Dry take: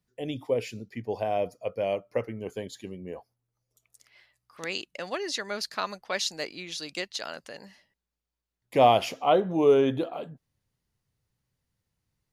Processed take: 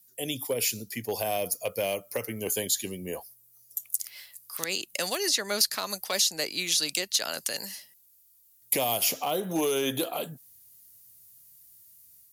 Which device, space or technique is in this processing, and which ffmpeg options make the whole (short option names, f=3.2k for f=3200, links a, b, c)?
FM broadcast chain: -filter_complex "[0:a]highpass=47,dynaudnorm=f=580:g=3:m=4.5dB,acrossover=split=290|970|2900|6200[a][b][c][d][e];[a]acompressor=threshold=-34dB:ratio=4[f];[b]acompressor=threshold=-24dB:ratio=4[g];[c]acompressor=threshold=-37dB:ratio=4[h];[d]acompressor=threshold=-43dB:ratio=4[i];[e]acompressor=threshold=-54dB:ratio=4[j];[f][g][h][i][j]amix=inputs=5:normalize=0,aemphasis=mode=production:type=75fm,alimiter=limit=-19dB:level=0:latency=1:release=145,asoftclip=type=hard:threshold=-21dB,lowpass=f=15k:w=0.5412,lowpass=f=15k:w=1.3066,aemphasis=mode=production:type=75fm"